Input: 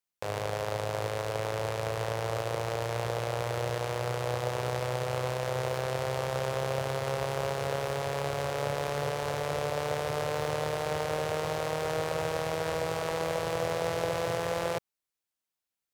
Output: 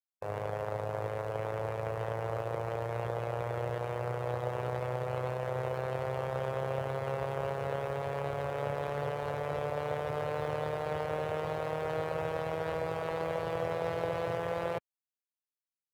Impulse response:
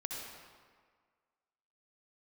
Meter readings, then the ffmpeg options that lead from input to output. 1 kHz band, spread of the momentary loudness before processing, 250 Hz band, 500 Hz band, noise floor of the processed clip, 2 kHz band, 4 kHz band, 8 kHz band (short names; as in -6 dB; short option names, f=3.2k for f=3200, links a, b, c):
-3.0 dB, 2 LU, -3.0 dB, -2.5 dB, under -85 dBFS, -5.0 dB, -11.5 dB, under -15 dB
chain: -af "afftdn=nr=17:nf=-39,highshelf=f=8.2k:g=7.5,volume=-2.5dB"